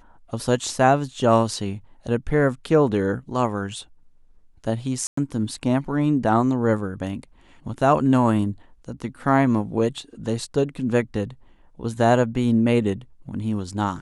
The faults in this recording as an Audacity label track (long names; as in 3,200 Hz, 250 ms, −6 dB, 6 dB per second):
5.070000	5.170000	drop-out 104 ms